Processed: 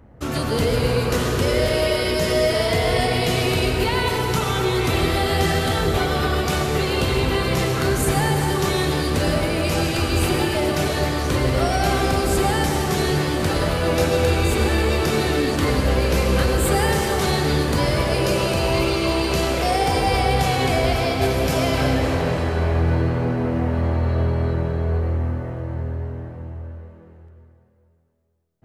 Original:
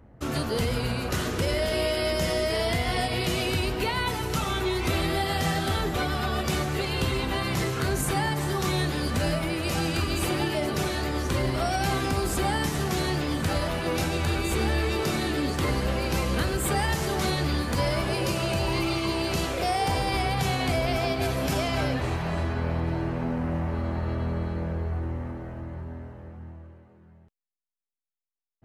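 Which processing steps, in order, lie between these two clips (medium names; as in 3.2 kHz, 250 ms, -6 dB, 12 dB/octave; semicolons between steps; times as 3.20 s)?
on a send: peaking EQ 480 Hz +11 dB 0.41 oct + reverberation RT60 2.6 s, pre-delay 78 ms, DRR 2 dB; on the sum: trim +4 dB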